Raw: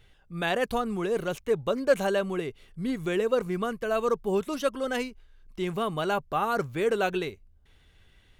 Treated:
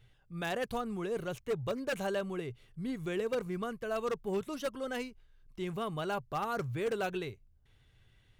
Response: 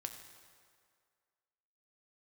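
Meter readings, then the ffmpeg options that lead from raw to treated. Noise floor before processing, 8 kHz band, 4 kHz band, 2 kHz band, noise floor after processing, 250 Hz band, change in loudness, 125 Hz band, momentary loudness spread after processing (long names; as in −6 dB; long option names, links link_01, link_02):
−60 dBFS, −6.5 dB, −7.5 dB, −7.5 dB, −66 dBFS, −7.0 dB, −8.0 dB, −4.0 dB, 7 LU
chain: -af "aeval=exprs='0.119*(abs(mod(val(0)/0.119+3,4)-2)-1)':channel_layout=same,aeval=exprs='0.126*(cos(1*acos(clip(val(0)/0.126,-1,1)))-cos(1*PI/2))+0.00794*(cos(3*acos(clip(val(0)/0.126,-1,1)))-cos(3*PI/2))+0.00398*(cos(5*acos(clip(val(0)/0.126,-1,1)))-cos(5*PI/2))':channel_layout=same,equalizer=frequency=120:width_type=o:width=0.41:gain=13,volume=-7dB"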